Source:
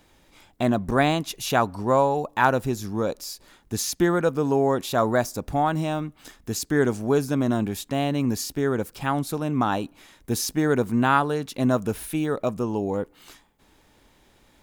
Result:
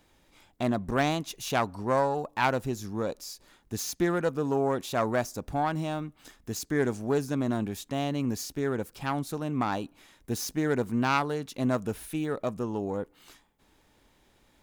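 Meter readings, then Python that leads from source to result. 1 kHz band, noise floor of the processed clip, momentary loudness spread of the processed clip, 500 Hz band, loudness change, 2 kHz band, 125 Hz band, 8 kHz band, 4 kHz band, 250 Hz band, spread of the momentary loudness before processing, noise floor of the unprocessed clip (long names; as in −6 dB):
−6.0 dB, −65 dBFS, 9 LU, −5.5 dB, −5.5 dB, −5.0 dB, −5.5 dB, −6.0 dB, −5.5 dB, −5.5 dB, 9 LU, −59 dBFS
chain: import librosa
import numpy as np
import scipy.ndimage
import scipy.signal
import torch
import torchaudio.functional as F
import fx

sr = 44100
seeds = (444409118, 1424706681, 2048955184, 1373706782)

y = fx.self_delay(x, sr, depth_ms=0.13)
y = fx.dynamic_eq(y, sr, hz=6300.0, q=4.2, threshold_db=-50.0, ratio=4.0, max_db=3)
y = y * 10.0 ** (-5.5 / 20.0)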